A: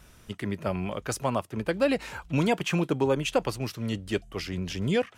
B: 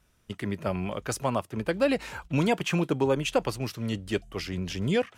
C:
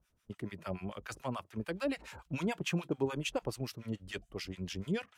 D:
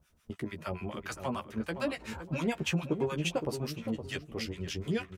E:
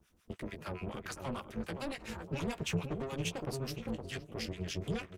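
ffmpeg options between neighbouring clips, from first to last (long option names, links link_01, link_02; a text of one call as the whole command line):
ffmpeg -i in.wav -af "agate=range=-13dB:threshold=-44dB:ratio=16:detection=peak" out.wav
ffmpeg -i in.wav -filter_complex "[0:a]acrossover=split=900[link_01][link_02];[link_01]aeval=exprs='val(0)*(1-1/2+1/2*cos(2*PI*6.9*n/s))':channel_layout=same[link_03];[link_02]aeval=exprs='val(0)*(1-1/2-1/2*cos(2*PI*6.9*n/s))':channel_layout=same[link_04];[link_03][link_04]amix=inputs=2:normalize=0,volume=-5dB" out.wav
ffmpeg -i in.wav -filter_complex "[0:a]asplit=2[link_01][link_02];[link_02]acompressor=threshold=-45dB:ratio=6,volume=0dB[link_03];[link_01][link_03]amix=inputs=2:normalize=0,asplit=2[link_04][link_05];[link_05]adelay=13,volume=-5.5dB[link_06];[link_04][link_06]amix=inputs=2:normalize=0,asplit=2[link_07][link_08];[link_08]adelay=515,lowpass=frequency=950:poles=1,volume=-8dB,asplit=2[link_09][link_10];[link_10]adelay=515,lowpass=frequency=950:poles=1,volume=0.32,asplit=2[link_11][link_12];[link_12]adelay=515,lowpass=frequency=950:poles=1,volume=0.32,asplit=2[link_13][link_14];[link_14]adelay=515,lowpass=frequency=950:poles=1,volume=0.32[link_15];[link_07][link_09][link_11][link_13][link_15]amix=inputs=5:normalize=0" out.wav
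ffmpeg -i in.wav -filter_complex "[0:a]acrossover=split=190|3900[link_01][link_02][link_03];[link_02]asoftclip=type=tanh:threshold=-35.5dB[link_04];[link_01][link_04][link_03]amix=inputs=3:normalize=0,tremolo=f=270:d=0.889,volume=2.5dB" out.wav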